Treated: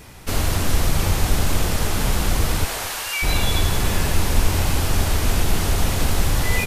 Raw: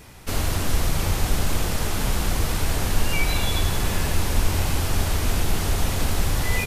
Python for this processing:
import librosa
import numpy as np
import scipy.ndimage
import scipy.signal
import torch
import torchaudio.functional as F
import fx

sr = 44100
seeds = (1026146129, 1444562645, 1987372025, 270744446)

y = fx.highpass(x, sr, hz=fx.line((2.64, 420.0), (3.22, 1300.0)), slope=12, at=(2.64, 3.22), fade=0.02)
y = fx.echo_feedback(y, sr, ms=221, feedback_pct=34, wet_db=-17)
y = F.gain(torch.from_numpy(y), 3.0).numpy()